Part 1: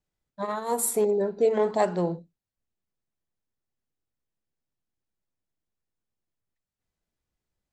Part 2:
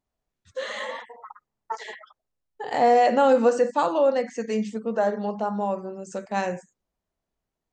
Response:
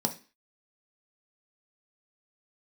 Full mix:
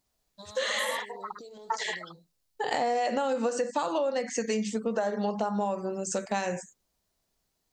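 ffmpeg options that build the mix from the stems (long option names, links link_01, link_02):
-filter_complex "[0:a]alimiter=limit=-22dB:level=0:latency=1:release=129,acompressor=threshold=-34dB:ratio=6,highshelf=frequency=2900:width_type=q:width=3:gain=14,volume=-10.5dB[link_01];[1:a]highshelf=frequency=3000:gain=10.5,acompressor=threshold=-22dB:ratio=2.5,volume=3dB,asplit=2[link_02][link_03];[link_03]apad=whole_len=340788[link_04];[link_01][link_04]sidechaincompress=threshold=-28dB:ratio=8:attack=16:release=523[link_05];[link_05][link_02]amix=inputs=2:normalize=0,acompressor=threshold=-26dB:ratio=4"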